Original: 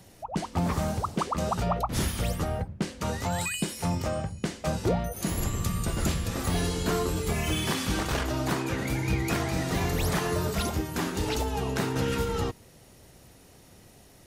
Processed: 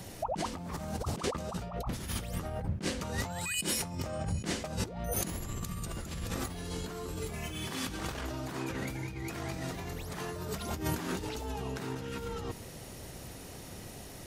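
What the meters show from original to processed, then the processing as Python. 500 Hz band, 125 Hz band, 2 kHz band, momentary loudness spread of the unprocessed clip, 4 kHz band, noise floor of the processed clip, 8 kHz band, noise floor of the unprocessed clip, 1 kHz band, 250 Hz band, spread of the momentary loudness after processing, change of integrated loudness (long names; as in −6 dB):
−8.0 dB, −8.0 dB, −7.0 dB, 4 LU, −5.5 dB, −46 dBFS, −4.0 dB, −54 dBFS, −8.5 dB, −8.0 dB, 9 LU, −7.5 dB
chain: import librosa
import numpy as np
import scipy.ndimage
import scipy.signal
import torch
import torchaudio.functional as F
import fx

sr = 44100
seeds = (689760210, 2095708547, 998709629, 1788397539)

y = fx.over_compress(x, sr, threshold_db=-37.0, ratio=-1.0)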